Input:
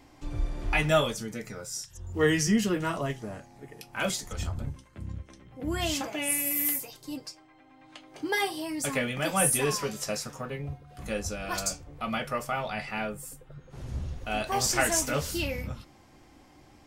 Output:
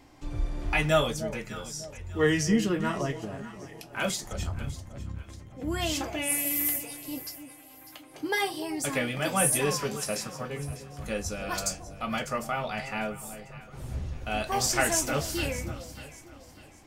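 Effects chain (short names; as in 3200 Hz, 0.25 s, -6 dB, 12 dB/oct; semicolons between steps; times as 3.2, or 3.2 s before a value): 1.21–3.38 high shelf 7700 Hz -6.5 dB; echo with dull and thin repeats by turns 0.299 s, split 810 Hz, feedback 59%, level -10.5 dB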